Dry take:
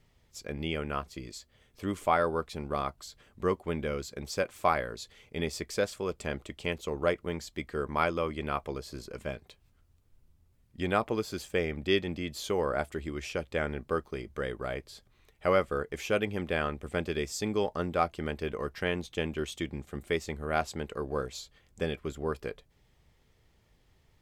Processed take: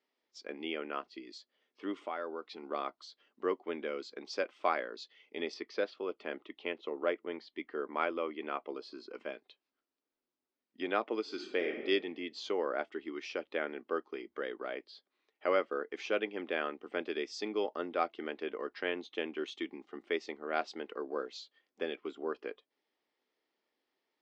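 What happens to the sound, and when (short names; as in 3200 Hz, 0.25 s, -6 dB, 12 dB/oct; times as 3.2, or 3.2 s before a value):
1.97–2.63 compressor 2:1, threshold -36 dBFS
5.54–8.75 air absorption 120 m
11.21–11.86 reverb throw, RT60 1.3 s, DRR 4 dB
whole clip: dynamic EQ 980 Hz, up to -3 dB, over -43 dBFS, Q 1.5; elliptic band-pass 280–5200 Hz, stop band 40 dB; spectral noise reduction 9 dB; gain -2.5 dB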